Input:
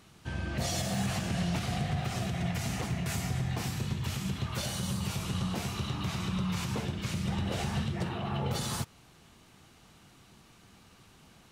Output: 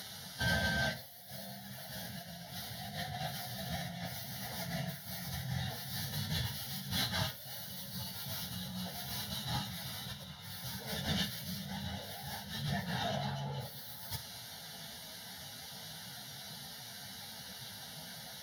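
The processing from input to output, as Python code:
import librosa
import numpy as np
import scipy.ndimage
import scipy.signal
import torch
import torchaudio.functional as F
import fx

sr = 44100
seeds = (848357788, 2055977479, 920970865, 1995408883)

p1 = fx.tracing_dist(x, sr, depth_ms=0.22)
p2 = scipy.signal.sosfilt(scipy.signal.butter(2, 130.0, 'highpass', fs=sr, output='sos'), p1)
p3 = fx.peak_eq(p2, sr, hz=11000.0, db=14.5, octaves=2.3)
p4 = fx.over_compress(p3, sr, threshold_db=-38.0, ratio=-0.5)
p5 = fx.fixed_phaser(p4, sr, hz=1700.0, stages=8)
p6 = fx.stretch_vocoder_free(p5, sr, factor=1.6)
p7 = p6 + fx.room_flutter(p6, sr, wall_m=8.6, rt60_s=0.24, dry=0)
y = F.gain(torch.from_numpy(p7), 5.5).numpy()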